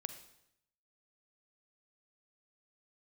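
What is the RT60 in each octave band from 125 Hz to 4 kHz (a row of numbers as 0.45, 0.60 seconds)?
0.95, 0.85, 0.80, 0.75, 0.75, 0.75 seconds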